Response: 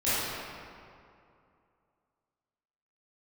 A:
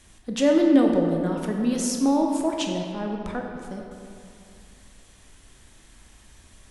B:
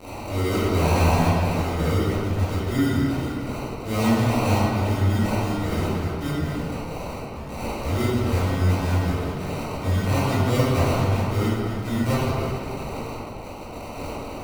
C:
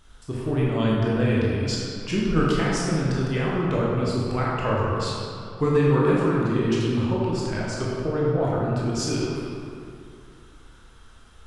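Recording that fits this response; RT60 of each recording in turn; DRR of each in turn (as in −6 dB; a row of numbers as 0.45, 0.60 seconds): B; 2.5, 2.5, 2.5 seconds; 1.0, −14.5, −6.0 decibels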